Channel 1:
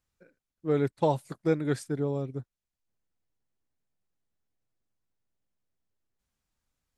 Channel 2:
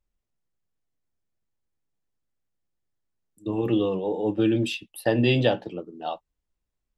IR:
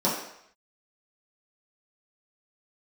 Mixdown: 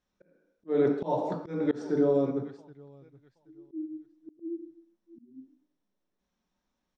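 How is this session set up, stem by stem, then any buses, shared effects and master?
-1.5 dB, 0.00 s, send -10.5 dB, echo send -19 dB, none
-5.0 dB, 0.00 s, send -21 dB, no echo send, cascade formant filter u; bass shelf 430 Hz +7 dB; spectral contrast expander 4:1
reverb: on, RT60 0.70 s, pre-delay 3 ms
echo: feedback delay 777 ms, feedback 21%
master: low-pass 5.7 kHz 24 dB/octave; slow attack 271 ms

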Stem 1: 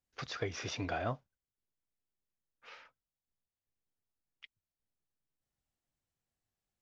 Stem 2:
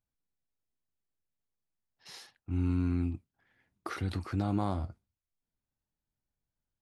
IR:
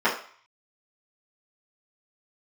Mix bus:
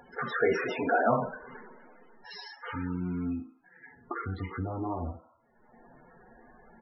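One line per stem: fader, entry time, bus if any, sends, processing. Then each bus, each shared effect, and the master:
-2.0 dB, 0.00 s, send -3.5 dB, low-pass 4 kHz 6 dB/octave; decay stretcher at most 52 dB/s
-0.5 dB, 0.25 s, send -15.5 dB, flange 0.32 Hz, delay 3.7 ms, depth 9.4 ms, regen +19%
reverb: on, RT60 0.50 s, pre-delay 3 ms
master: upward compressor, threshold -30 dBFS; loudest bins only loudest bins 32

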